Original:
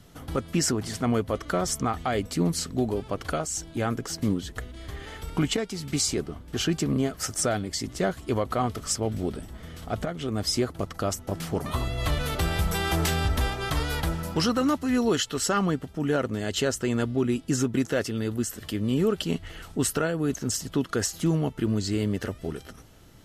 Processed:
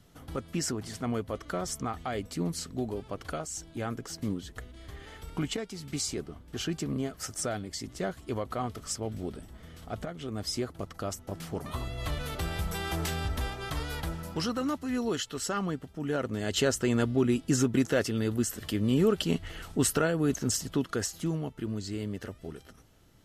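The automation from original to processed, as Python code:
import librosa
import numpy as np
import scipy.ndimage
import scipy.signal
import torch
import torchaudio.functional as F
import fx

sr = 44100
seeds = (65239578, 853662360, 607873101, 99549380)

y = fx.gain(x, sr, db=fx.line((16.02, -7.0), (16.6, -0.5), (20.48, -0.5), (21.47, -8.5)))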